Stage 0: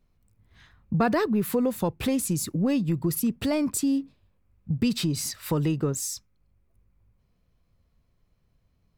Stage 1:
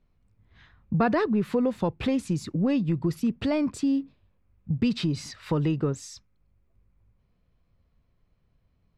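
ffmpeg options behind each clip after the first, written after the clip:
ffmpeg -i in.wav -af "lowpass=3900" out.wav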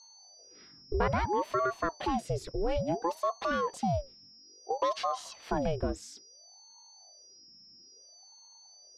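ffmpeg -i in.wav -af "aeval=exprs='val(0)+0.00398*sin(2*PI*5300*n/s)':channel_layout=same,aeval=exprs='val(0)*sin(2*PI*550*n/s+550*0.65/0.59*sin(2*PI*0.59*n/s))':channel_layout=same,volume=-2.5dB" out.wav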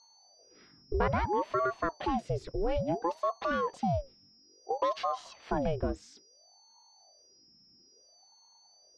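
ffmpeg -i in.wav -af "adynamicsmooth=sensitivity=1:basefreq=5000" out.wav

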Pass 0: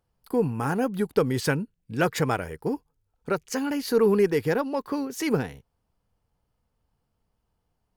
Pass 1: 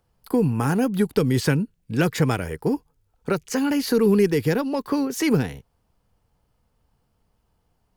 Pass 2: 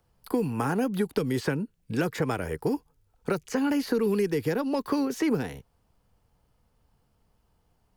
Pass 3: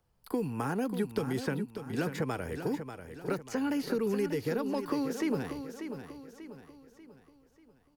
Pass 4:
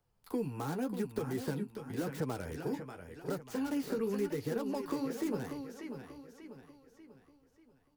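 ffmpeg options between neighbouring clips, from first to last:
ffmpeg -i in.wav -filter_complex "[0:a]acrossover=split=330|2300[link_01][link_02][link_03];[link_02]acompressor=threshold=-32dB:ratio=6[link_04];[link_03]alimiter=level_in=3dB:limit=-24dB:level=0:latency=1:release=58,volume=-3dB[link_05];[link_01][link_04][link_05]amix=inputs=3:normalize=0,volume=7dB" out.wav
ffmpeg -i in.wav -filter_complex "[0:a]acrossover=split=260|1800|4400[link_01][link_02][link_03][link_04];[link_01]acompressor=threshold=-34dB:ratio=4[link_05];[link_02]acompressor=threshold=-25dB:ratio=4[link_06];[link_03]acompressor=threshold=-45dB:ratio=4[link_07];[link_04]acompressor=threshold=-46dB:ratio=4[link_08];[link_05][link_06][link_07][link_08]amix=inputs=4:normalize=0" out.wav
ffmpeg -i in.wav -af "aecho=1:1:590|1180|1770|2360|2950:0.355|0.153|0.0656|0.0282|0.0121,volume=-5.5dB" out.wav
ffmpeg -i in.wav -filter_complex "[0:a]acrossover=split=1300[link_01][link_02];[link_02]aeval=exprs='(mod(100*val(0)+1,2)-1)/100':channel_layout=same[link_03];[link_01][link_03]amix=inputs=2:normalize=0,flanger=delay=6.6:depth=9.1:regen=-33:speed=0.9:shape=triangular" out.wav

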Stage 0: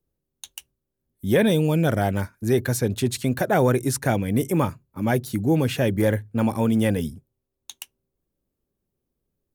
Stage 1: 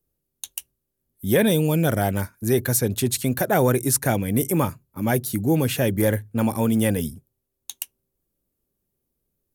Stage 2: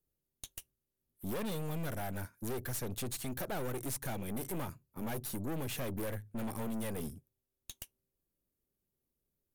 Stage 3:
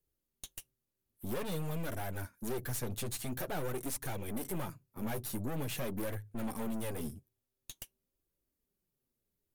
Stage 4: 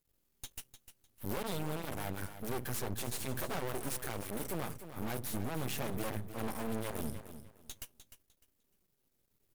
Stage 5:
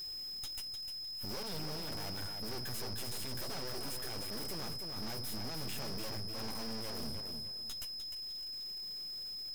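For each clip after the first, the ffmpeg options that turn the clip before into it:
ffmpeg -i in.wav -af "equalizer=frequency=13000:width_type=o:width=1.2:gain=11" out.wav
ffmpeg -i in.wav -af "acompressor=threshold=-22dB:ratio=2.5,aeval=exprs='(tanh(31.6*val(0)+0.65)-tanh(0.65))/31.6':channel_layout=same,volume=-5.5dB" out.wav
ffmpeg -i in.wav -af "flanger=delay=1.8:depth=8.5:regen=-28:speed=0.48:shape=triangular,volume=4dB" out.wav
ffmpeg -i in.wav -filter_complex "[0:a]aeval=exprs='max(val(0),0)':channel_layout=same,asplit=2[link_01][link_02];[link_02]aecho=0:1:302|604|906:0.266|0.0639|0.0153[link_03];[link_01][link_03]amix=inputs=2:normalize=0,volume=10.5dB" out.wav
ffmpeg -i in.wav -af "aeval=exprs='val(0)+0.5*0.00316*sgn(val(0))':channel_layout=same,aeval=exprs='val(0)+0.00708*sin(2*PI*5100*n/s)':channel_layout=same,asoftclip=type=tanh:threshold=-37.5dB,volume=3dB" out.wav

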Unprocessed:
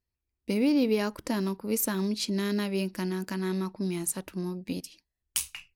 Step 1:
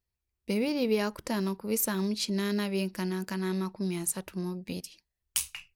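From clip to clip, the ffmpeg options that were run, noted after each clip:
ffmpeg -i in.wav -af "equalizer=frequency=280:width_type=o:width=0.29:gain=-10" out.wav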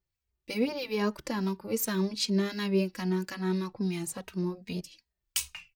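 ffmpeg -i in.wav -filter_complex "[0:a]equalizer=frequency=11000:width=2.1:gain=-10.5,acrossover=split=1400[link_01][link_02];[link_01]aeval=exprs='val(0)*(1-0.5/2+0.5/2*cos(2*PI*2.9*n/s))':channel_layout=same[link_03];[link_02]aeval=exprs='val(0)*(1-0.5/2-0.5/2*cos(2*PI*2.9*n/s))':channel_layout=same[link_04];[link_03][link_04]amix=inputs=2:normalize=0,asplit=2[link_05][link_06];[link_06]adelay=2.9,afreqshift=-2.5[link_07];[link_05][link_07]amix=inputs=2:normalize=1,volume=5.5dB" out.wav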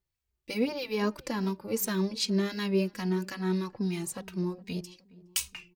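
ffmpeg -i in.wav -filter_complex "[0:a]asplit=2[link_01][link_02];[link_02]adelay=416,lowpass=frequency=950:poles=1,volume=-20dB,asplit=2[link_03][link_04];[link_04]adelay=416,lowpass=frequency=950:poles=1,volume=0.48,asplit=2[link_05][link_06];[link_06]adelay=416,lowpass=frequency=950:poles=1,volume=0.48,asplit=2[link_07][link_08];[link_08]adelay=416,lowpass=frequency=950:poles=1,volume=0.48[link_09];[link_01][link_03][link_05][link_07][link_09]amix=inputs=5:normalize=0" out.wav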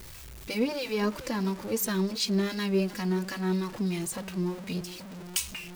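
ffmpeg -i in.wav -af "aeval=exprs='val(0)+0.5*0.0126*sgn(val(0))':channel_layout=same" out.wav

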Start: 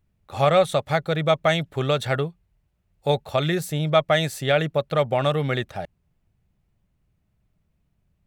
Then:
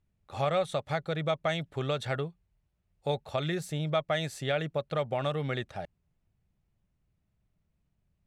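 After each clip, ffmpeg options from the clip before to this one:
ffmpeg -i in.wav -af "lowpass=9500,acompressor=threshold=-24dB:ratio=1.5,volume=-6.5dB" out.wav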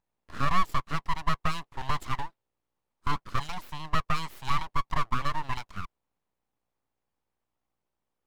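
ffmpeg -i in.wav -af "aeval=exprs='val(0)+0.000562*(sin(2*PI*60*n/s)+sin(2*PI*2*60*n/s)/2+sin(2*PI*3*60*n/s)/3+sin(2*PI*4*60*n/s)/4+sin(2*PI*5*60*n/s)/5)':channel_layout=same,highpass=frequency=500:width_type=q:width=4.5,aeval=exprs='abs(val(0))':channel_layout=same,volume=-2dB" out.wav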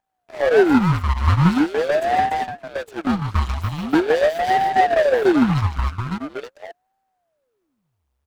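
ffmpeg -i in.wav -filter_complex "[0:a]asplit=2[link_01][link_02];[link_02]aecho=0:1:45|65|123|149|291|861:0.188|0.178|0.224|0.422|0.668|0.596[link_03];[link_01][link_03]amix=inputs=2:normalize=0,aeval=exprs='val(0)*sin(2*PI*420*n/s+420*0.85/0.43*sin(2*PI*0.43*n/s))':channel_layout=same,volume=5.5dB" out.wav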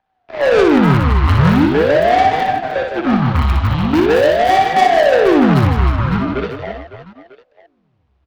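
ffmpeg -i in.wav -filter_complex "[0:a]acrossover=split=370|670|4500[link_01][link_02][link_03][link_04];[link_04]acrusher=bits=3:dc=4:mix=0:aa=0.000001[link_05];[link_01][link_02][link_03][link_05]amix=inputs=4:normalize=0,asoftclip=type=tanh:threshold=-19dB,aecho=1:1:60|156|309.6|555.4|948.6:0.631|0.398|0.251|0.158|0.1,volume=9dB" out.wav

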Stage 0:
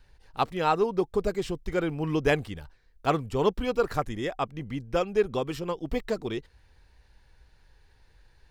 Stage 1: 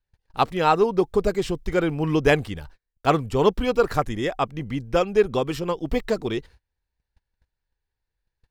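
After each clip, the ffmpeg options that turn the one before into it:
ffmpeg -i in.wav -af "agate=range=-29dB:threshold=-50dB:ratio=16:detection=peak,volume=5.5dB" out.wav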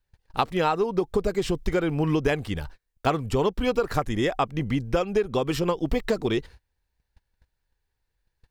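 ffmpeg -i in.wav -af "acompressor=threshold=-24dB:ratio=10,volume=4.5dB" out.wav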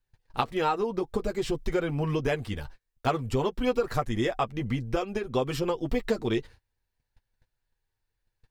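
ffmpeg -i in.wav -af "flanger=delay=7.8:depth=1.2:regen=-19:speed=0.55:shape=triangular" out.wav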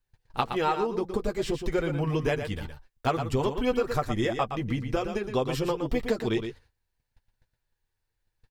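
ffmpeg -i in.wav -af "aecho=1:1:117:0.398" out.wav

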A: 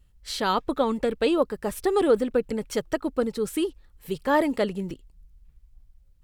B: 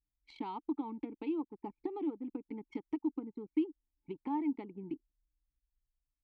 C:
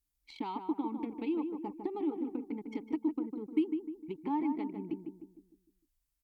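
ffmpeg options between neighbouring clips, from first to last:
ffmpeg -i in.wav -filter_complex "[0:a]acompressor=threshold=-32dB:ratio=8,asplit=3[link_01][link_02][link_03];[link_01]bandpass=frequency=300:width_type=q:width=8,volume=0dB[link_04];[link_02]bandpass=frequency=870:width_type=q:width=8,volume=-6dB[link_05];[link_03]bandpass=frequency=2240:width_type=q:width=8,volume=-9dB[link_06];[link_04][link_05][link_06]amix=inputs=3:normalize=0,anlmdn=0.000251,volume=7.5dB" out.wav
ffmpeg -i in.wav -filter_complex "[0:a]aemphasis=mode=production:type=cd,asplit=2[link_01][link_02];[link_02]adelay=152,lowpass=frequency=1300:poles=1,volume=-5.5dB,asplit=2[link_03][link_04];[link_04]adelay=152,lowpass=frequency=1300:poles=1,volume=0.46,asplit=2[link_05][link_06];[link_06]adelay=152,lowpass=frequency=1300:poles=1,volume=0.46,asplit=2[link_07][link_08];[link_08]adelay=152,lowpass=frequency=1300:poles=1,volume=0.46,asplit=2[link_09][link_10];[link_10]adelay=152,lowpass=frequency=1300:poles=1,volume=0.46,asplit=2[link_11][link_12];[link_12]adelay=152,lowpass=frequency=1300:poles=1,volume=0.46[link_13];[link_03][link_05][link_07][link_09][link_11][link_13]amix=inputs=6:normalize=0[link_14];[link_01][link_14]amix=inputs=2:normalize=0,volume=2.5dB" out.wav

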